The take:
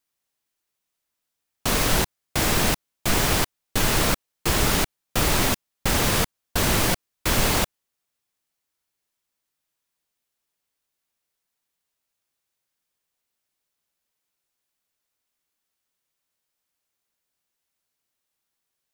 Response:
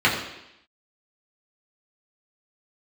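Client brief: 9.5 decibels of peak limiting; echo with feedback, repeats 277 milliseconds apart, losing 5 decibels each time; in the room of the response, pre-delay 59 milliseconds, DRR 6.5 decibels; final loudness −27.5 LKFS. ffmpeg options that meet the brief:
-filter_complex "[0:a]alimiter=limit=-17dB:level=0:latency=1,aecho=1:1:277|554|831|1108|1385|1662|1939:0.562|0.315|0.176|0.0988|0.0553|0.031|0.0173,asplit=2[link_01][link_02];[1:a]atrim=start_sample=2205,adelay=59[link_03];[link_02][link_03]afir=irnorm=-1:irlink=0,volume=-26.5dB[link_04];[link_01][link_04]amix=inputs=2:normalize=0,volume=-1dB"

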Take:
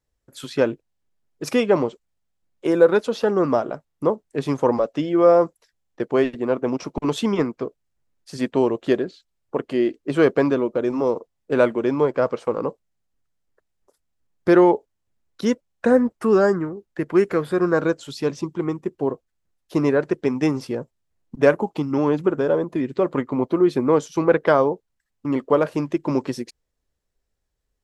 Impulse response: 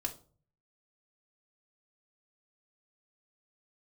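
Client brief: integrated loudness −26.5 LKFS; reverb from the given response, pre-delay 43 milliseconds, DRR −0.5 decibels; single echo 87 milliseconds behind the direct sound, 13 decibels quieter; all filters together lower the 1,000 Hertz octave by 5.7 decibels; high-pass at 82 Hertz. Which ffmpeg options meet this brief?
-filter_complex "[0:a]highpass=82,equalizer=frequency=1000:width_type=o:gain=-7.5,aecho=1:1:87:0.224,asplit=2[link_01][link_02];[1:a]atrim=start_sample=2205,adelay=43[link_03];[link_02][link_03]afir=irnorm=-1:irlink=0,volume=-0.5dB[link_04];[link_01][link_04]amix=inputs=2:normalize=0,volume=-7.5dB"

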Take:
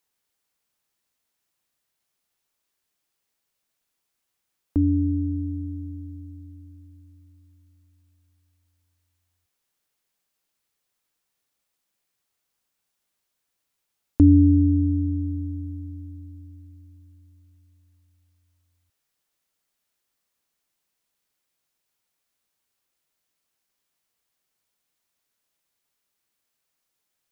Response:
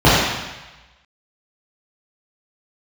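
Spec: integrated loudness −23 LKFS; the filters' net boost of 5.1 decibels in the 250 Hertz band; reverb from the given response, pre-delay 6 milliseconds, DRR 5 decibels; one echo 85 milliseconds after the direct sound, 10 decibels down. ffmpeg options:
-filter_complex "[0:a]equalizer=frequency=250:width_type=o:gain=6,aecho=1:1:85:0.316,asplit=2[link_01][link_02];[1:a]atrim=start_sample=2205,adelay=6[link_03];[link_02][link_03]afir=irnorm=-1:irlink=0,volume=-34.5dB[link_04];[link_01][link_04]amix=inputs=2:normalize=0,volume=-4dB"

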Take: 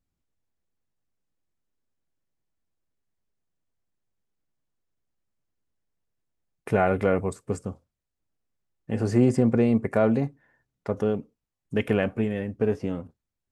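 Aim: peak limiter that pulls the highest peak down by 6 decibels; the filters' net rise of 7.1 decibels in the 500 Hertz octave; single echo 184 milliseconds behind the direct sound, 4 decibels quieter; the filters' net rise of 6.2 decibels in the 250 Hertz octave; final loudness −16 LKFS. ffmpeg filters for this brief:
ffmpeg -i in.wav -af "equalizer=frequency=250:width_type=o:gain=5.5,equalizer=frequency=500:width_type=o:gain=7,alimiter=limit=-9dB:level=0:latency=1,aecho=1:1:184:0.631,volume=4.5dB" out.wav

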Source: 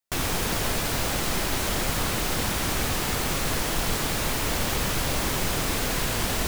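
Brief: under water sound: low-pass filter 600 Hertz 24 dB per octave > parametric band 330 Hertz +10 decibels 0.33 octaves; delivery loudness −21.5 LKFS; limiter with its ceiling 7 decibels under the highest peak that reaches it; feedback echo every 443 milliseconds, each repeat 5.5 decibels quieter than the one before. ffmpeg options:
ffmpeg -i in.wav -af "alimiter=limit=-19.5dB:level=0:latency=1,lowpass=frequency=600:width=0.5412,lowpass=frequency=600:width=1.3066,equalizer=frequency=330:width_type=o:width=0.33:gain=10,aecho=1:1:443|886|1329|1772|2215|2658|3101:0.531|0.281|0.149|0.079|0.0419|0.0222|0.0118,volume=10dB" out.wav

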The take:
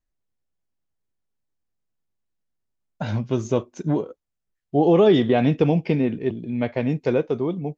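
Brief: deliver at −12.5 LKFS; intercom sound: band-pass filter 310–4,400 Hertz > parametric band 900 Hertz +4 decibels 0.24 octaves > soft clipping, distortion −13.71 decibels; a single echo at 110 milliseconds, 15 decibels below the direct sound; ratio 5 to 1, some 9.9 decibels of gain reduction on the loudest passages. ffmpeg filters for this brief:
ffmpeg -i in.wav -af "acompressor=threshold=-23dB:ratio=5,highpass=310,lowpass=4400,equalizer=frequency=900:width_type=o:width=0.24:gain=4,aecho=1:1:110:0.178,asoftclip=threshold=-24.5dB,volume=21.5dB" out.wav

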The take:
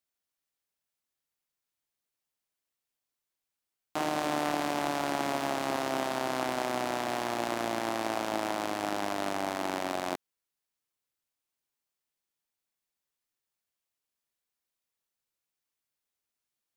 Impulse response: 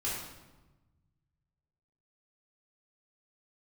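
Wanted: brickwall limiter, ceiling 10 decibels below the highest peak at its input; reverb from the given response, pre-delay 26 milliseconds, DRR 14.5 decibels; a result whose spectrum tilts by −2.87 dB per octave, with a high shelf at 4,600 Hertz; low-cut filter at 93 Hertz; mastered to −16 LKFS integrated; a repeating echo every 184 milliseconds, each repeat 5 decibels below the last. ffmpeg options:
-filter_complex "[0:a]highpass=93,highshelf=frequency=4600:gain=-6.5,alimiter=level_in=2.5dB:limit=-24dB:level=0:latency=1,volume=-2.5dB,aecho=1:1:184|368|552|736|920|1104|1288:0.562|0.315|0.176|0.0988|0.0553|0.031|0.0173,asplit=2[link_01][link_02];[1:a]atrim=start_sample=2205,adelay=26[link_03];[link_02][link_03]afir=irnorm=-1:irlink=0,volume=-19.5dB[link_04];[link_01][link_04]amix=inputs=2:normalize=0,volume=21.5dB"

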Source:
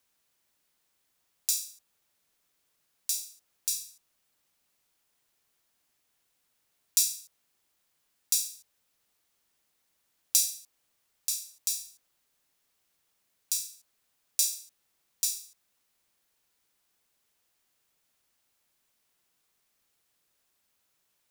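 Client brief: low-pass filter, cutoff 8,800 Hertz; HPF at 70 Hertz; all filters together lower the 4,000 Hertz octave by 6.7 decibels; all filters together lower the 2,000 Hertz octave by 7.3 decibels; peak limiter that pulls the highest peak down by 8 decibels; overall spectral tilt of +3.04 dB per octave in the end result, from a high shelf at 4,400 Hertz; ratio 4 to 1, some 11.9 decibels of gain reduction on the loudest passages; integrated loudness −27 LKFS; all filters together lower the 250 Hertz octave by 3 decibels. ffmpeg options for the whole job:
ffmpeg -i in.wav -af "highpass=70,lowpass=8800,equalizer=frequency=250:width_type=o:gain=-4,equalizer=frequency=2000:width_type=o:gain=-6.5,equalizer=frequency=4000:width_type=o:gain=-5.5,highshelf=frequency=4400:gain=-3.5,acompressor=threshold=-41dB:ratio=4,volume=22dB,alimiter=limit=-3dB:level=0:latency=1" out.wav

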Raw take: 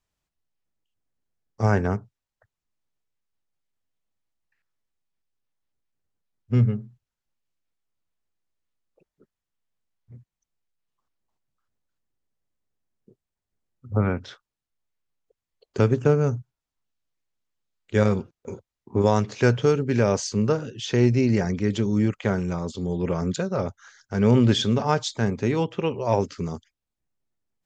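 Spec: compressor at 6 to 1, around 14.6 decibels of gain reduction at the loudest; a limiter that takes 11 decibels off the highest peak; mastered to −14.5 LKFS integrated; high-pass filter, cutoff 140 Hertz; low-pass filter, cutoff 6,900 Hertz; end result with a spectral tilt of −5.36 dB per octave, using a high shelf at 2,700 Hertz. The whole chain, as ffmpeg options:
ffmpeg -i in.wav -af "highpass=140,lowpass=6900,highshelf=frequency=2700:gain=3.5,acompressor=threshold=-31dB:ratio=6,volume=25dB,alimiter=limit=-3.5dB:level=0:latency=1" out.wav

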